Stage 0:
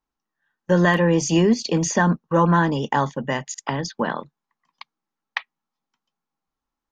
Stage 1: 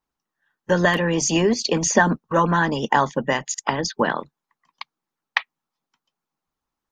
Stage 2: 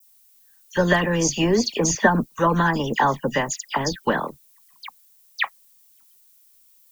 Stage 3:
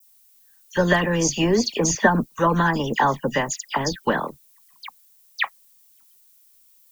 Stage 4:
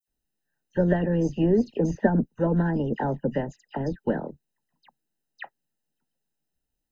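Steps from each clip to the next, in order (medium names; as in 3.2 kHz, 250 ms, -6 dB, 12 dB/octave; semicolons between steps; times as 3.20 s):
harmonic-percussive split harmonic -10 dB; trim +5.5 dB
bass shelf 64 Hz +10.5 dB; added noise violet -55 dBFS; phase dispersion lows, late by 79 ms, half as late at 2.8 kHz; trim -1 dB
no audible change
boxcar filter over 39 samples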